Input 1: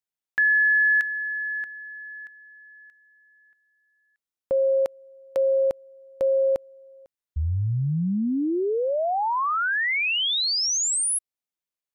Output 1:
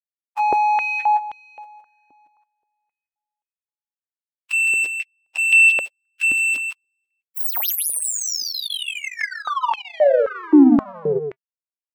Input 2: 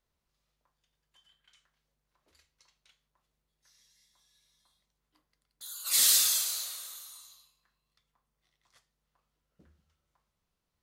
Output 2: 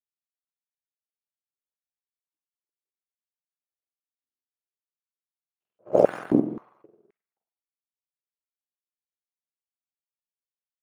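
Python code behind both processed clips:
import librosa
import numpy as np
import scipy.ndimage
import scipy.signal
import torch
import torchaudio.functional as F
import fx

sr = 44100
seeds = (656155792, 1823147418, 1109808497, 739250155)

p1 = fx.octave_mirror(x, sr, pivot_hz=1200.0)
p2 = fx.high_shelf(p1, sr, hz=4000.0, db=8.5)
p3 = fx.level_steps(p2, sr, step_db=14)
p4 = p2 + (p3 * librosa.db_to_amplitude(-1.0))
p5 = fx.power_curve(p4, sr, exponent=2.0)
p6 = p5 + fx.echo_single(p5, sr, ms=163, db=-7.0, dry=0)
p7 = fx.filter_held_highpass(p6, sr, hz=3.8, low_hz=290.0, high_hz=3000.0)
y = p7 * librosa.db_to_amplitude(1.5)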